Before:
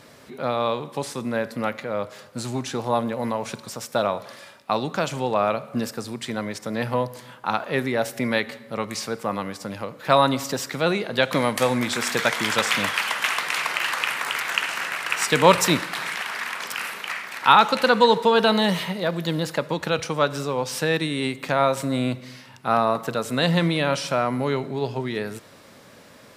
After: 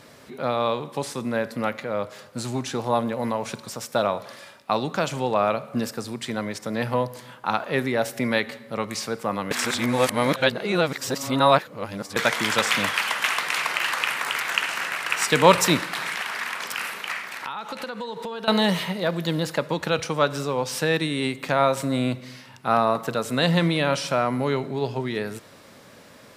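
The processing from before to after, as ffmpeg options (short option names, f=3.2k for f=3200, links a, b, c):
-filter_complex "[0:a]asettb=1/sr,asplit=3[a][b][c];[a]atrim=end=17.214[d];[b]atrim=start=17.21:end=18.48,asetpts=PTS-STARTPTS,afade=t=in:d=0.004:c=qsin,afade=t=out:st=1.266:d=0.004:c=qsin,acompressor=threshold=-29dB:ratio=8:attack=3.2:release=140:knee=1:detection=peak[e];[c]atrim=start=18.476[f];[d][e]acrossfade=d=0.004:c1=hsin:c2=qsin[g];[g][f]acrossfade=d=0.004:c1=qsin:c2=hsin,asplit=3[h][i][j];[h]atrim=end=9.512[k];[i]atrim=start=9.508:end=12.162,asetpts=PTS-STARTPTS,areverse[l];[j]atrim=start=12.158[m];[k][l]acrossfade=d=0.004:c1=hsin:c2=hsin[n];[n][m]acrossfade=d=0.004:c1=hsin:c2=hsin"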